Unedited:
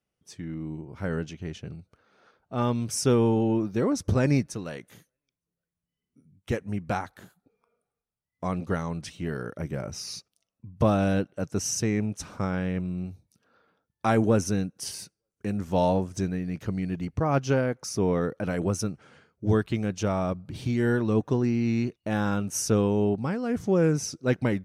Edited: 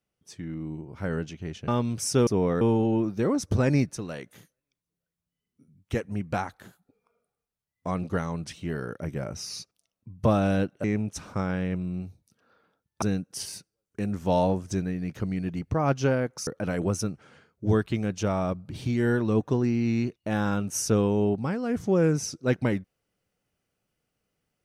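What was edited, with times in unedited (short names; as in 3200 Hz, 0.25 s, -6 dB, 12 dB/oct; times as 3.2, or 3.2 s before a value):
1.68–2.59 cut
11.41–11.88 cut
14.06–14.48 cut
17.93–18.27 move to 3.18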